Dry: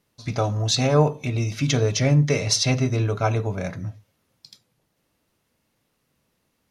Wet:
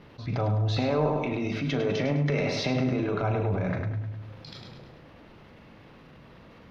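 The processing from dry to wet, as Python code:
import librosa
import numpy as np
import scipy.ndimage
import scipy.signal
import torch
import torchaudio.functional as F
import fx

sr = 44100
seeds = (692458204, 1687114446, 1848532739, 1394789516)

y = fx.highpass(x, sr, hz=170.0, slope=24, at=(0.77, 3.23))
y = fx.transient(y, sr, attack_db=-5, sustain_db=9)
y = fx.air_absorb(y, sr, metres=330.0)
y = fx.doubler(y, sr, ms=39.0, db=-10.5)
y = fx.echo_feedback(y, sr, ms=103, feedback_pct=38, wet_db=-6.5)
y = fx.env_flatten(y, sr, amount_pct=50)
y = y * 10.0 ** (-7.0 / 20.0)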